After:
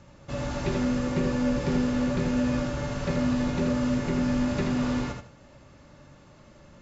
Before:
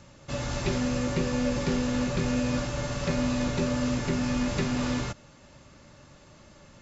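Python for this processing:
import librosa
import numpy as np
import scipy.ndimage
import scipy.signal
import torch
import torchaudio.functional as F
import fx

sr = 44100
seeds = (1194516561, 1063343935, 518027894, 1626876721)

y = fx.high_shelf(x, sr, hz=2800.0, db=-8.0)
y = fx.echo_feedback(y, sr, ms=80, feedback_pct=24, wet_db=-5)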